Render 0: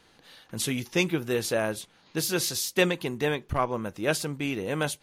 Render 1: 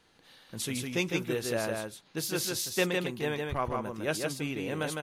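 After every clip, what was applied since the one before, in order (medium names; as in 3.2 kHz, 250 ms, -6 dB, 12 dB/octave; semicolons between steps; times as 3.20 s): delay 156 ms -3.5 dB; trim -5.5 dB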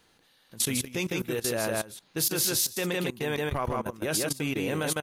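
level held to a coarse grid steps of 18 dB; treble shelf 9.8 kHz +10 dB; trim +7 dB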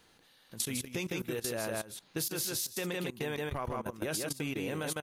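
compression, threshold -32 dBFS, peak gain reduction 10 dB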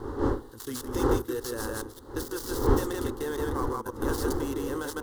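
dead-time distortion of 0.069 ms; wind noise 430 Hz -34 dBFS; static phaser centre 650 Hz, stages 6; trim +6 dB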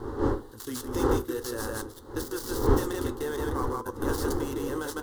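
flange 0.43 Hz, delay 8.4 ms, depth 4.1 ms, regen -65%; trim +4.5 dB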